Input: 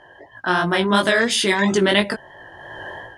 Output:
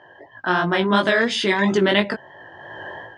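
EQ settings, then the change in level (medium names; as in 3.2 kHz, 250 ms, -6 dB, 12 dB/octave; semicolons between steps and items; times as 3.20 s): high-pass 100 Hz; distance through air 120 m; 0.0 dB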